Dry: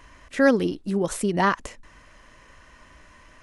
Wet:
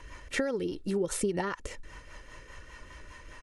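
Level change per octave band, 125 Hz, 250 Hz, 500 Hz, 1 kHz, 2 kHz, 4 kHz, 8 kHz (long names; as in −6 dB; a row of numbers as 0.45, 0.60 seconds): −8.5, −10.0, −7.5, −13.5, −10.0, −5.0, −2.0 decibels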